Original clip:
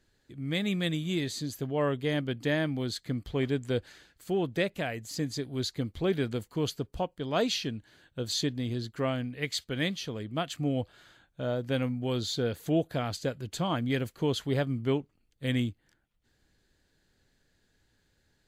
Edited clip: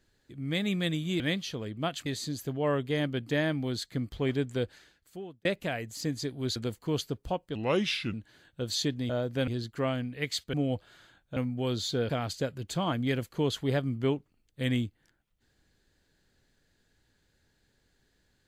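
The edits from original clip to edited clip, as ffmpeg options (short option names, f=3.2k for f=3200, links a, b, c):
-filter_complex "[0:a]asplit=12[a][b][c][d][e][f][g][h][i][j][k][l];[a]atrim=end=1.202[m];[b]atrim=start=9.738:end=10.602[n];[c]atrim=start=1.198:end=4.59,asetpts=PTS-STARTPTS,afade=t=out:st=2.432:d=0.96[o];[d]atrim=start=4.59:end=5.702,asetpts=PTS-STARTPTS,afade=t=in:d=0.004:c=hsin[p];[e]atrim=start=6.248:end=7.244[q];[f]atrim=start=7.24:end=7.72,asetpts=PTS-STARTPTS,asetrate=36162,aresample=44100[r];[g]atrim=start=7.716:end=8.682[s];[h]atrim=start=11.428:end=11.812[t];[i]atrim=start=8.678:end=9.742[u];[j]atrim=start=10.598:end=11.432[v];[k]atrim=start=11.808:end=12.542[w];[l]atrim=start=12.928[x];[m][n]acrossfade=d=0.004:c1=hsin:c2=hsin[y];[o][p]concat=n=2:v=0:a=1[z];[y][z]acrossfade=d=0.004:c1=hsin:c2=hsin[aa];[aa][q]acrossfade=d=0.004:c1=hsin:c2=hsin[ab];[ab][r]acrossfade=d=0.004:c1=hsin:c2=hsin[ac];[ac][s]acrossfade=d=0.004:c1=hsin:c2=hsin[ad];[ad][t]acrossfade=d=0.004:c1=hsin:c2=hsin[ae];[ae][u]acrossfade=d=0.004:c1=hsin:c2=hsin[af];[af][v]acrossfade=d=0.004:c1=hsin:c2=hsin[ag];[ag][w]acrossfade=d=0.004:c1=hsin:c2=hsin[ah];[ah][x]acrossfade=d=0.004:c1=hsin:c2=hsin"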